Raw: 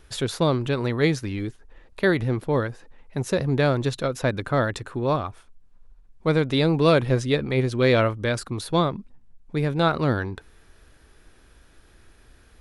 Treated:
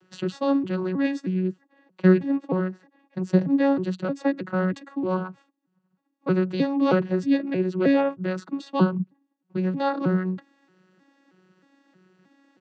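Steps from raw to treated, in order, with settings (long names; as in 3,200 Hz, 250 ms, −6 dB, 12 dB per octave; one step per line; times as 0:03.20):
vocoder with an arpeggio as carrier bare fifth, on F#3, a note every 314 ms
comb filter 6.1 ms, depth 41%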